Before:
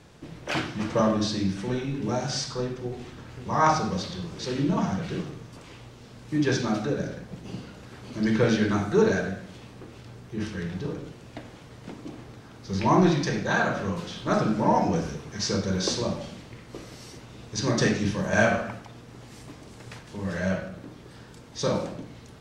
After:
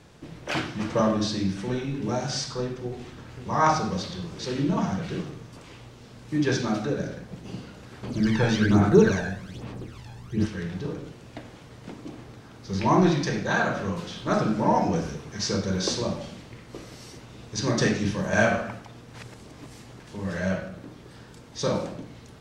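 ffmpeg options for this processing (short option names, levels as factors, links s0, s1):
-filter_complex "[0:a]asettb=1/sr,asplit=3[s0][s1][s2];[s0]atrim=end=8.034[s3];[s1]atrim=start=8.03:end=10.46,asetpts=PTS-STARTPTS,afade=t=in:d=0.004:c=qsin,afade=t=out:st=2.426:d=0.004:c=qsin,aphaser=in_gain=1:out_gain=1:delay=1.2:decay=0.64:speed=1.2:type=sinusoidal[s4];[s2]atrim=start=10.456[s5];[s3][s4]acrossfade=d=0.004:c1=hsin:c2=qsin[s6];[s6][s5]acrossfade=d=0.004:c1=qsin:c2=hsin,asplit=3[s7][s8][s9];[s7]atrim=end=19.142[s10];[s8]atrim=start=19.138:end=20.002,asetpts=PTS-STARTPTS,areverse[s11];[s9]atrim=start=19.998[s12];[s10][s11]acrossfade=d=0.004:c1=hsin:c2=hsin[s13];[s13][s12]acrossfade=d=0.004:c1=hsin:c2=hsin"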